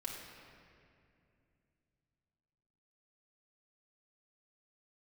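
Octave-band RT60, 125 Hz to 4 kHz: 4.0, 3.5, 2.8, 2.2, 2.3, 1.7 s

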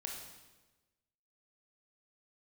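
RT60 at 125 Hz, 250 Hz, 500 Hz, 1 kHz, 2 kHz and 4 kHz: 1.4, 1.3, 1.2, 1.1, 1.1, 1.0 s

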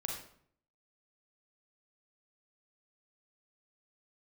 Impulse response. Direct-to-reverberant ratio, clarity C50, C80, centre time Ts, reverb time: 0.0 dB, 3.0 dB, 7.0 dB, 38 ms, 0.60 s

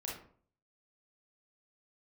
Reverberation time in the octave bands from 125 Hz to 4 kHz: 0.65, 0.55, 0.55, 0.50, 0.40, 0.30 s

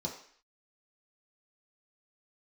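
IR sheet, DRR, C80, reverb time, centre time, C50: -2.5 dB, 10.5 dB, 0.55 s, 25 ms, 7.0 dB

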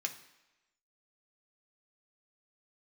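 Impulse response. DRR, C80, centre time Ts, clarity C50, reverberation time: 3.0 dB, 14.5 dB, 11 ms, 12.0 dB, 1.0 s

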